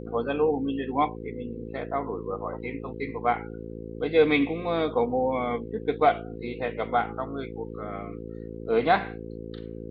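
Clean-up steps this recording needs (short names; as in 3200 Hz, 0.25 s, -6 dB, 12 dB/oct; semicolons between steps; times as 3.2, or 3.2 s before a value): de-hum 55.7 Hz, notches 9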